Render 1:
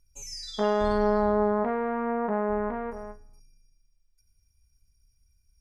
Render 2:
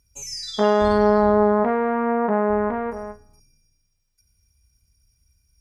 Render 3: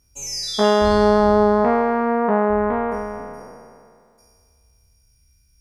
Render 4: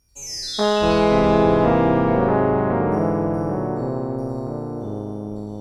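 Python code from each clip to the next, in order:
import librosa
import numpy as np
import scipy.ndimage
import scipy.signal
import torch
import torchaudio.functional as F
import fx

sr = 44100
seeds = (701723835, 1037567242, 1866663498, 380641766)

y1 = scipy.signal.sosfilt(scipy.signal.butter(2, 49.0, 'highpass', fs=sr, output='sos'), x)
y1 = y1 * 10.0 ** (7.0 / 20.0)
y2 = fx.spec_trails(y1, sr, decay_s=2.18)
y2 = y2 * 10.0 ** (1.5 / 20.0)
y3 = fx.echo_pitch(y2, sr, ms=87, semitones=-4, count=3, db_per_echo=-3.0)
y3 = y3 * 10.0 ** (-3.0 / 20.0)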